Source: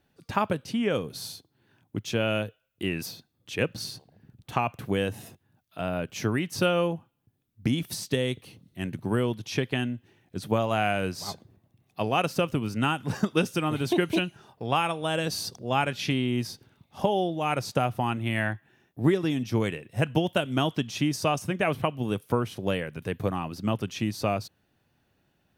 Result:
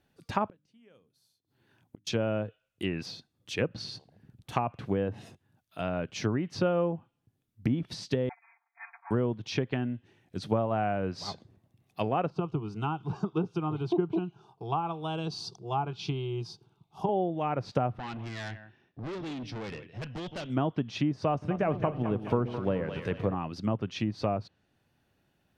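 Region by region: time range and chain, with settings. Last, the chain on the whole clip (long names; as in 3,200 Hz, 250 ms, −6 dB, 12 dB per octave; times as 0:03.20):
0:00.48–0:02.07: mains-hum notches 50/100/150/200/250/300 Hz + gate with flip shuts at −34 dBFS, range −31 dB
0:08.29–0:09.11: lower of the sound and its delayed copy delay 7.3 ms + linear-phase brick-wall band-pass 700–2,500 Hz + comb filter 4.4 ms, depth 94%
0:12.30–0:17.09: low-pass filter 3,300 Hz 6 dB per octave + phaser with its sweep stopped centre 370 Hz, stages 8
0:17.98–0:20.50: Butterworth low-pass 5,300 Hz + single-tap delay 161 ms −19.5 dB + tube saturation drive 33 dB, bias 0.25
0:21.29–0:23.35: mu-law and A-law mismatch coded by mu + echo with a time of its own for lows and highs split 430 Hz, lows 130 ms, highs 213 ms, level −10.5 dB
whole clip: dynamic equaliser 4,600 Hz, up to +5 dB, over −49 dBFS, Q 1.3; treble cut that deepens with the level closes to 1,100 Hz, closed at −22.5 dBFS; level −2 dB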